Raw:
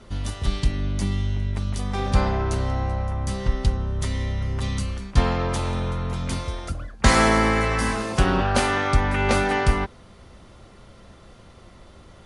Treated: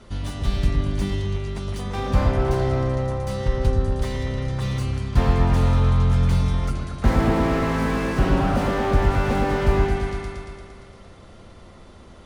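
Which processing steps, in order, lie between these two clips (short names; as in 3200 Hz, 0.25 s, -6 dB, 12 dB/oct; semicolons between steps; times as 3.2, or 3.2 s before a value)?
repeats that get brighter 0.115 s, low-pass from 750 Hz, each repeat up 1 oct, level -3 dB; slew limiter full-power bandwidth 65 Hz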